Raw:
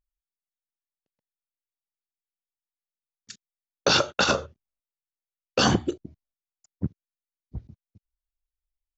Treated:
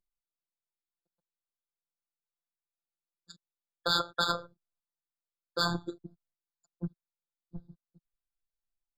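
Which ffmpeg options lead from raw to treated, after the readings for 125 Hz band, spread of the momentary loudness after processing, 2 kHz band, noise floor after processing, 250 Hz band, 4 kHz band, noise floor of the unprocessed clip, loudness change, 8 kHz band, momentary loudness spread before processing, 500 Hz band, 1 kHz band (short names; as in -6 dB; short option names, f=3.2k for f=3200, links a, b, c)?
-9.5 dB, 21 LU, -8.0 dB, under -85 dBFS, -11.0 dB, -6.0 dB, under -85 dBFS, -7.5 dB, n/a, 21 LU, -11.5 dB, -6.0 dB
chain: -filter_complex "[0:a]acrossover=split=120|990[a][b][c];[b]acompressor=threshold=-32dB:ratio=6[d];[a][d][c]amix=inputs=3:normalize=0,afftfilt=real='hypot(re,im)*cos(PI*b)':imag='0':win_size=1024:overlap=0.75,adynamicsmooth=sensitivity=1.5:basefreq=5.8k,afftfilt=real='re*eq(mod(floor(b*sr/1024/1700),2),0)':imag='im*eq(mod(floor(b*sr/1024/1700),2),0)':win_size=1024:overlap=0.75"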